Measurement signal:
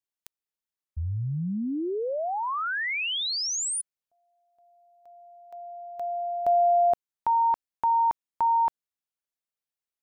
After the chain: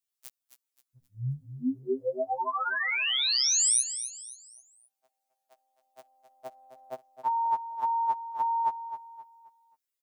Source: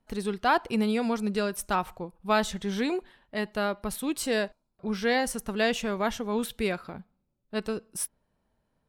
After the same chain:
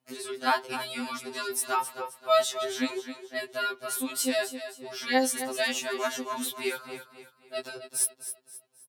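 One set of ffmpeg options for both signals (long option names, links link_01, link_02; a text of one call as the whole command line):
ffmpeg -i in.wav -filter_complex "[0:a]highpass=160,highshelf=frequency=3900:gain=9,asplit=2[link_01][link_02];[link_02]aecho=0:1:264|528|792|1056:0.282|0.101|0.0365|0.0131[link_03];[link_01][link_03]amix=inputs=2:normalize=0,afftfilt=real='re*2.45*eq(mod(b,6),0)':imag='im*2.45*eq(mod(b,6),0)':win_size=2048:overlap=0.75" out.wav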